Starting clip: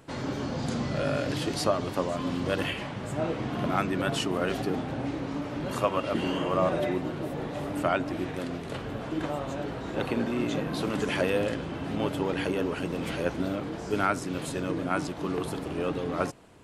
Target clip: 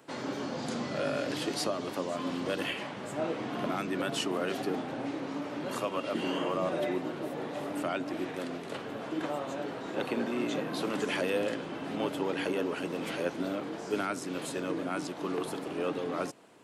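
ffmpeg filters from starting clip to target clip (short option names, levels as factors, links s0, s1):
-filter_complex "[0:a]acrossover=split=390|2600[s0][s1][s2];[s1]alimiter=limit=0.0708:level=0:latency=1:release=193[s3];[s0][s3][s2]amix=inputs=3:normalize=0,highpass=230,volume=0.841"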